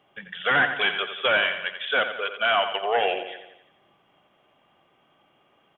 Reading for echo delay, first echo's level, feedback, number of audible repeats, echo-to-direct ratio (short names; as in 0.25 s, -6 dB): 87 ms, -9.5 dB, 53%, 5, -8.0 dB